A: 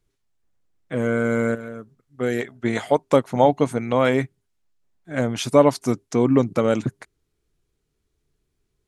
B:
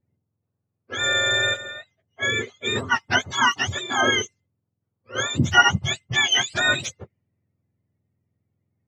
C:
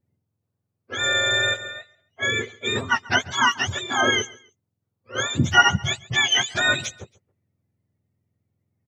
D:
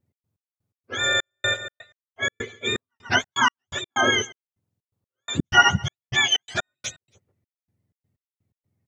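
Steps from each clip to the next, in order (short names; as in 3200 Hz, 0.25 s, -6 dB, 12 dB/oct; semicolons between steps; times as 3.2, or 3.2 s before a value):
spectrum mirrored in octaves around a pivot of 910 Hz; low-pass opened by the level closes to 1200 Hz, open at -22.5 dBFS; gain +1.5 dB
feedback echo 0.138 s, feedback 31%, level -22 dB
step gate "x.x..x.xxx..x" 125 bpm -60 dB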